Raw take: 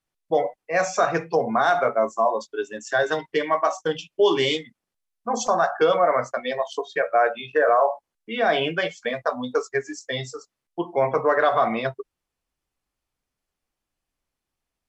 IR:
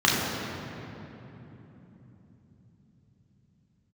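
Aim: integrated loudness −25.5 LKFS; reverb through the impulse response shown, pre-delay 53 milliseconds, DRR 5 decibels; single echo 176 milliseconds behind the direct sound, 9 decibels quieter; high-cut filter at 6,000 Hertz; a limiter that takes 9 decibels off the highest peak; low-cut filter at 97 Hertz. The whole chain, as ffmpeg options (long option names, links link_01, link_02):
-filter_complex "[0:a]highpass=97,lowpass=6000,alimiter=limit=-17.5dB:level=0:latency=1,aecho=1:1:176:0.355,asplit=2[link_01][link_02];[1:a]atrim=start_sample=2205,adelay=53[link_03];[link_02][link_03]afir=irnorm=-1:irlink=0,volume=-24dB[link_04];[link_01][link_04]amix=inputs=2:normalize=0,volume=1dB"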